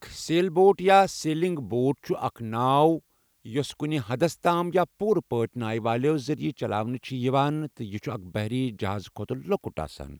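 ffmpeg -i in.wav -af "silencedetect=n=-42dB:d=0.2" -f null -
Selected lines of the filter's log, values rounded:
silence_start: 2.99
silence_end: 3.45 | silence_duration: 0.47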